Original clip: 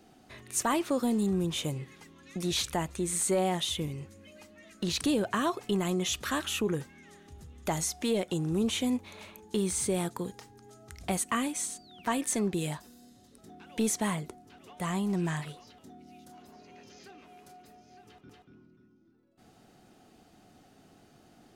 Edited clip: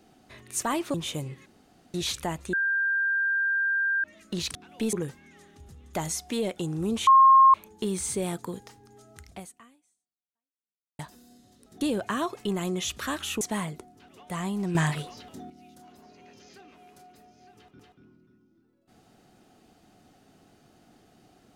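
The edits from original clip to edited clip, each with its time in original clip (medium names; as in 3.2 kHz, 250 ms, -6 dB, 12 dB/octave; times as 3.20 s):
0.94–1.44 s: delete
1.96–2.44 s: room tone
3.03–4.54 s: bleep 1.59 kHz -22.5 dBFS
5.05–6.65 s: swap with 13.53–13.91 s
8.79–9.26 s: bleep 1.07 kHz -12 dBFS
10.92–12.71 s: fade out exponential
15.25–16.00 s: gain +8.5 dB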